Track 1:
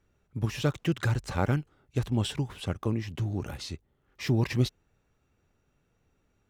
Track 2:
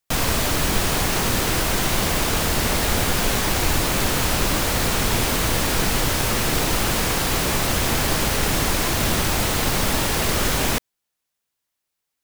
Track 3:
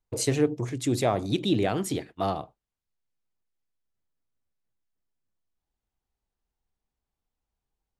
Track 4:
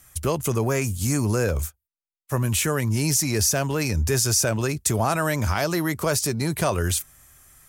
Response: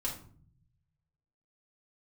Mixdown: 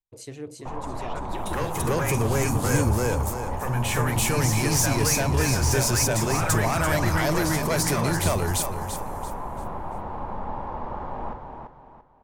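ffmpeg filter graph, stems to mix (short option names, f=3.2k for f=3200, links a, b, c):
-filter_complex "[0:a]adelay=500,volume=-4dB[a];[1:a]lowpass=f=910:t=q:w=5.1,adelay=550,volume=-17.5dB,asplit=3[b][c][d];[c]volume=-8.5dB[e];[d]volume=-3.5dB[f];[2:a]volume=-14dB,asplit=2[g][h];[h]volume=-3dB[i];[3:a]asoftclip=type=tanh:threshold=-17dB,adelay=1300,volume=3dB,asplit=3[j][k][l];[k]volume=-12dB[m];[l]volume=-3.5dB[n];[a][j]amix=inputs=2:normalize=0,bandpass=f=1.7k:t=q:w=1.4:csg=0,alimiter=limit=-22.5dB:level=0:latency=1,volume=0dB[o];[4:a]atrim=start_sample=2205[p];[e][m]amix=inputs=2:normalize=0[q];[q][p]afir=irnorm=-1:irlink=0[r];[f][i][n]amix=inputs=3:normalize=0,aecho=0:1:339|678|1017|1356|1695:1|0.34|0.116|0.0393|0.0134[s];[b][g][o][r][s]amix=inputs=5:normalize=0"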